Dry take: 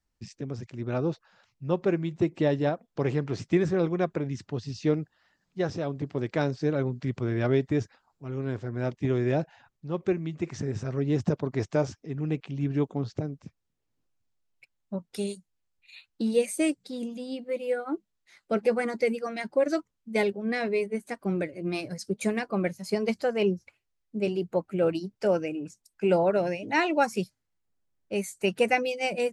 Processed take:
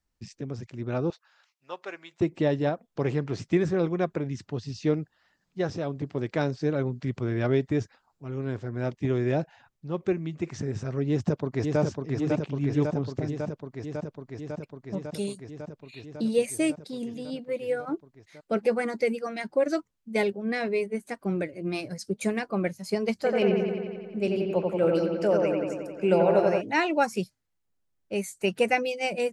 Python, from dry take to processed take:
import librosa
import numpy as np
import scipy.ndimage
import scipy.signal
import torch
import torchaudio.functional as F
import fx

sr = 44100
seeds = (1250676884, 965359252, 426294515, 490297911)

y = fx.highpass(x, sr, hz=980.0, slope=12, at=(1.1, 2.21))
y = fx.echo_throw(y, sr, start_s=11.08, length_s=0.72, ms=550, feedback_pct=80, wet_db=-3.5)
y = fx.echo_wet_lowpass(y, sr, ms=89, feedback_pct=71, hz=2600.0, wet_db=-3.0, at=(23.23, 26.6), fade=0.02)